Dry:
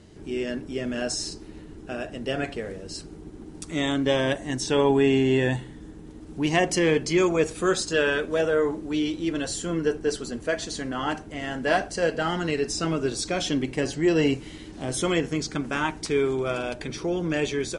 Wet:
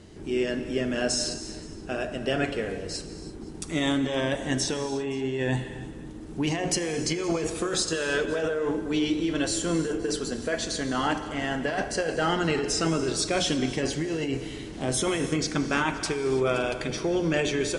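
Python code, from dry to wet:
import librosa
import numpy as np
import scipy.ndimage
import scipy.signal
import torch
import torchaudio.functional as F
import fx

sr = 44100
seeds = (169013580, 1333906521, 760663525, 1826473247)

y = fx.hum_notches(x, sr, base_hz=60, count=5)
y = fx.over_compress(y, sr, threshold_db=-26.0, ratio=-1.0)
y = y + 10.0 ** (-23.5 / 20.0) * np.pad(y, (int(519 * sr / 1000.0), 0))[:len(y)]
y = fx.rev_gated(y, sr, seeds[0], gate_ms=360, shape='flat', drr_db=9.0)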